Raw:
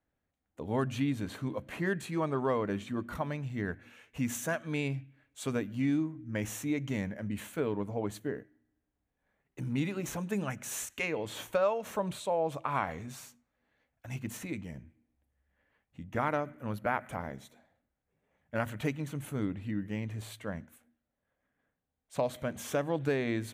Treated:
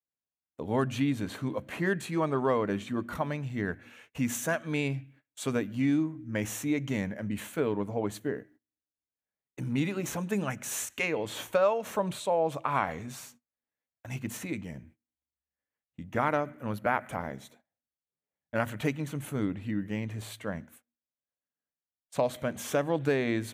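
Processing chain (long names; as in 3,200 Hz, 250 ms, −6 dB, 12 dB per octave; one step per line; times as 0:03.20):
high-pass filter 93 Hz 6 dB per octave
noise gate −59 dBFS, range −24 dB
level +3.5 dB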